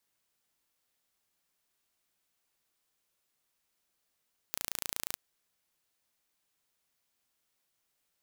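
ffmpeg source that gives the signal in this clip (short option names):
-f lavfi -i "aevalsrc='0.447*eq(mod(n,1558),0)':d=0.63:s=44100"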